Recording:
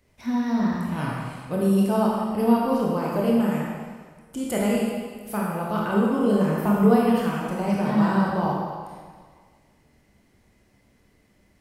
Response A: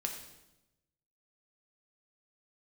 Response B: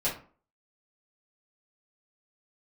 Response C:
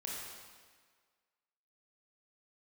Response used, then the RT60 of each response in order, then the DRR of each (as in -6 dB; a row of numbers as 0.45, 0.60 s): C; 0.95, 0.40, 1.6 s; 2.0, -10.5, -4.5 dB